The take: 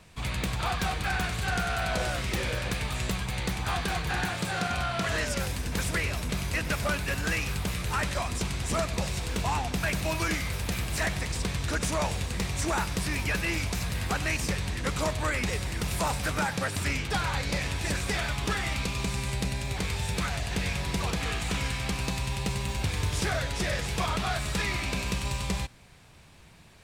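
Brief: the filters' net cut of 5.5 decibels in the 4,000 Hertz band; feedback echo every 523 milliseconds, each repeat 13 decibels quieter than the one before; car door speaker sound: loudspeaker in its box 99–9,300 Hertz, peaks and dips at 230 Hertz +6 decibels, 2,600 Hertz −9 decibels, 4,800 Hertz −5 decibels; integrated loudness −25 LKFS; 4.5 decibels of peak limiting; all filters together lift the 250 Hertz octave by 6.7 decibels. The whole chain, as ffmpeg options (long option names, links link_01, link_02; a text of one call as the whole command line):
ffmpeg -i in.wav -af "equalizer=frequency=250:width_type=o:gain=6.5,equalizer=frequency=4000:width_type=o:gain=-3,alimiter=limit=-21dB:level=0:latency=1,highpass=99,equalizer=frequency=230:width_type=q:width=4:gain=6,equalizer=frequency=2600:width_type=q:width=4:gain=-9,equalizer=frequency=4800:width_type=q:width=4:gain=-5,lowpass=frequency=9300:width=0.5412,lowpass=frequency=9300:width=1.3066,aecho=1:1:523|1046|1569:0.224|0.0493|0.0108,volume=6dB" out.wav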